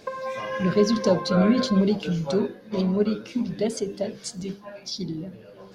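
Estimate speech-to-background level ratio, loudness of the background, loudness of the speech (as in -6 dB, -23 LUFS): 7.5 dB, -32.5 LUFS, -25.0 LUFS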